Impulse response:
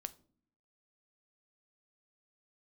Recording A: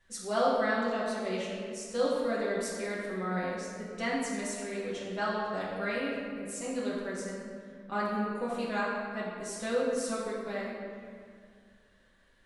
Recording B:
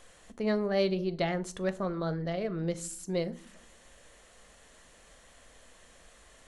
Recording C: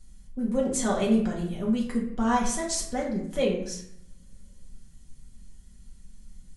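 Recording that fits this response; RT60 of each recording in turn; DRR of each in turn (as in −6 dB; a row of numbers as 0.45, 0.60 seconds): B; 2.0 s, non-exponential decay, 0.70 s; −8.5, 12.0, −4.5 decibels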